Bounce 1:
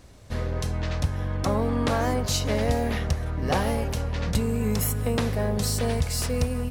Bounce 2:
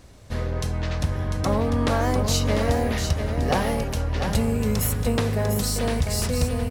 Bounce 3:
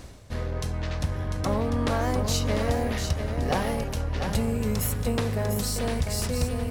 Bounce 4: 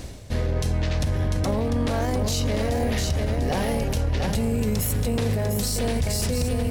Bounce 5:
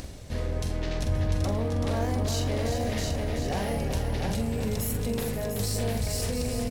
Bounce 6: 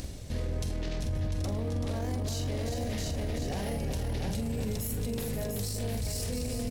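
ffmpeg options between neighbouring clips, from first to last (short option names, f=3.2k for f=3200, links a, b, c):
-af "aecho=1:1:697:0.447,volume=1.5dB"
-af "aeval=exprs='0.335*(cos(1*acos(clip(val(0)/0.335,-1,1)))-cos(1*PI/2))+0.0075*(cos(8*acos(clip(val(0)/0.335,-1,1)))-cos(8*PI/2))':c=same,areverse,acompressor=mode=upward:threshold=-25dB:ratio=2.5,areverse,volume=-3.5dB"
-af "equalizer=f=1.2k:t=o:w=0.97:g=-6.5,alimiter=limit=-23.5dB:level=0:latency=1:release=21,volume=7.5dB"
-filter_complex "[0:a]acompressor=mode=upward:threshold=-30dB:ratio=2.5,asplit=2[a][b];[b]aecho=0:1:45|382|527:0.422|0.473|0.2[c];[a][c]amix=inputs=2:normalize=0,volume=-6dB"
-af "equalizer=f=1.1k:w=0.52:g=-5.5,alimiter=level_in=2.5dB:limit=-24dB:level=0:latency=1:release=22,volume=-2.5dB,volume=1.5dB"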